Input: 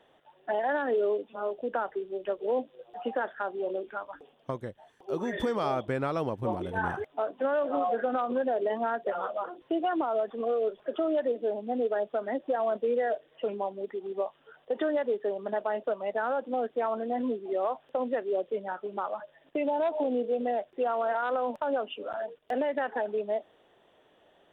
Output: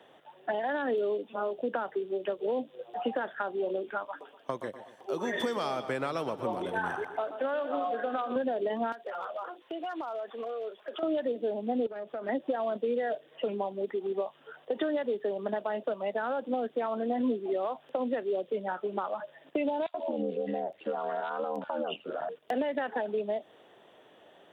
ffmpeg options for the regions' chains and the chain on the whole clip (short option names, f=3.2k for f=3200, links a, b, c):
-filter_complex "[0:a]asettb=1/sr,asplit=3[a][b][c];[a]atrim=end=4.054[d];[b]atrim=start=4.05:end=8.36,asetpts=PTS-STARTPTS,afade=t=in:d=0.004:c=qsin,afade=t=out:st=4.306:d=0.004:c=qsin,highpass=f=470:p=1,aecho=1:1:122|244|366|488:0.224|0.101|0.0453|0.0204,atrim=end_sample=190071[e];[c]atrim=start=8.356[f];[d][e]acrossfade=d=0.004:c1=hsin:c2=qsin[g];[g][f]acrossfade=d=0.004:c1=qsin:c2=hsin,asettb=1/sr,asplit=3[h][i][j];[h]atrim=end=8.924[k];[i]atrim=start=8.92:end=11.03,asetpts=PTS-STARTPTS,afade=t=in:d=0.004:c=qsin,afade=t=out:st=2.106:d=0.004:c=qsin,highpass=f=1.1k:p=1,acompressor=threshold=-38dB:ratio=6:attack=3.2:release=140:knee=1:detection=peak,aeval=exprs='clip(val(0),-1,0.0168)':c=same[l];[j]atrim=start=11.026[m];[k][l]acrossfade=d=0.004:c1=hsin:c2=qsin[n];[n][m]acrossfade=d=0.004:c1=qsin:c2=hsin,asettb=1/sr,asplit=3[o][p][q];[o]atrim=end=11.864[r];[p]atrim=start=11.86:end=12.29,asetpts=PTS-STARTPTS,afade=t=in:d=0.004:c=qsin,afade=t=out:st=0.426:d=0.004:c=qsin,acompressor=threshold=-35dB:ratio=16:attack=3.2:release=140:knee=1:detection=peak,aeval=exprs='(tanh(44.7*val(0)+0.3)-tanh(0.3))/44.7':c=same[s];[q]atrim=start=12.286[t];[r][s]acrossfade=d=0.004:c1=hsin:c2=qsin[u];[u][t]acrossfade=d=0.004:c1=qsin:c2=hsin,asettb=1/sr,asplit=3[v][w][x];[v]atrim=end=19.864[y];[w]atrim=start=19.86:end=22.29,asetpts=PTS-STARTPTS,afade=t=in:d=0.004:c=qsin,afade=t=out:st=2.426:d=0.004:c=qsin,acompressor=threshold=-33dB:ratio=1.5:attack=3.2:release=140:knee=1:detection=peak,aeval=exprs='val(0)*sin(2*PI*40*n/s)':c=same,acrossover=split=1600[z][aa];[z]adelay=80[ab];[ab][aa]amix=inputs=2:normalize=0,atrim=end_sample=107163[ac];[x]atrim=start=22.286[ad];[y][ac]acrossfade=d=0.004:c1=hsin:c2=qsin[ae];[ae][ad]acrossfade=d=0.004:c1=qsin:c2=hsin,acrossover=split=230|3000[af][ag][ah];[ag]acompressor=threshold=-35dB:ratio=6[ai];[af][ai][ah]amix=inputs=3:normalize=0,highpass=120,volume=5.5dB"